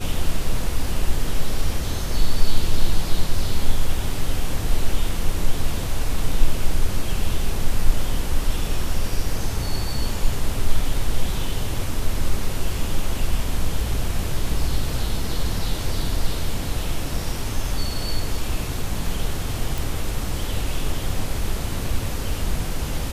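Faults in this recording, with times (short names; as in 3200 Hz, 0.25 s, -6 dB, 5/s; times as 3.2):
19.78 pop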